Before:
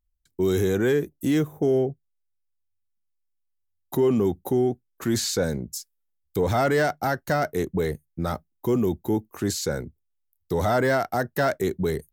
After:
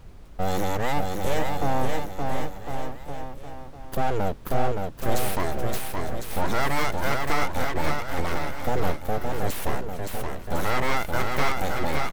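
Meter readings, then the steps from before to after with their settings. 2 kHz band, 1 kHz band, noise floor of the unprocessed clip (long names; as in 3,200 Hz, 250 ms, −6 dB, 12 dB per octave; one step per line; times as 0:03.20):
+1.5 dB, +3.5 dB, −75 dBFS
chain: full-wave rectification
background noise brown −43 dBFS
bouncing-ball delay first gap 570 ms, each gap 0.85×, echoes 5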